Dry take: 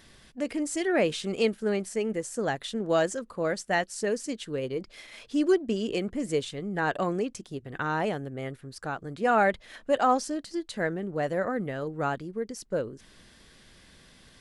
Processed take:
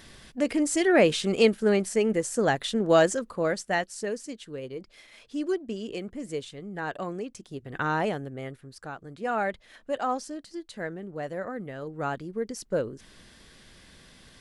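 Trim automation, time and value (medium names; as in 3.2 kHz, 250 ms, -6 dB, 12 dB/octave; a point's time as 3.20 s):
3.09 s +5 dB
4.37 s -5.5 dB
7.25 s -5.5 dB
7.85 s +2.5 dB
8.94 s -5.5 dB
11.66 s -5.5 dB
12.46 s +2 dB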